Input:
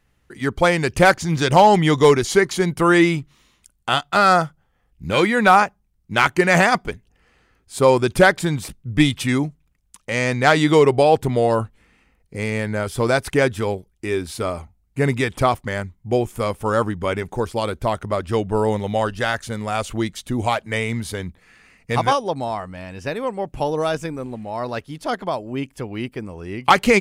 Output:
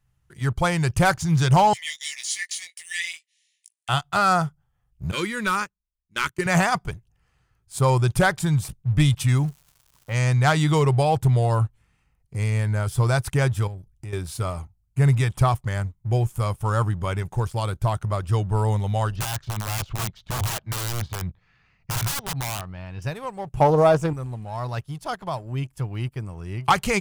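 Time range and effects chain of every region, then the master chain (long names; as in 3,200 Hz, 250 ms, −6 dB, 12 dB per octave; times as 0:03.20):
0:01.73–0:03.89: linear-phase brick-wall band-pass 1,700–11,000 Hz + double-tracking delay 18 ms −4.5 dB
0:05.11–0:06.46: phaser with its sweep stopped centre 300 Hz, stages 4 + noise gate −29 dBFS, range −15 dB
0:09.25–0:10.14: low-pass that shuts in the quiet parts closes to 780 Hz, open at −17 dBFS + surface crackle 430 per second −39 dBFS
0:13.67–0:14.13: low-shelf EQ 190 Hz +9.5 dB + downward compressor 3 to 1, threshold −35 dBFS
0:19.16–0:23.02: de-essing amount 70% + low-pass filter 4,600 Hz 24 dB per octave + wrap-around overflow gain 19.5 dB
0:23.60–0:24.13: parametric band 550 Hz +14.5 dB 2.5 octaves + highs frequency-modulated by the lows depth 0.12 ms
whole clip: graphic EQ with 10 bands 125 Hz +10 dB, 250 Hz −12 dB, 500 Hz −8 dB, 2,000 Hz −7 dB, 4,000 Hz −4 dB; leveller curve on the samples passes 1; level −3.5 dB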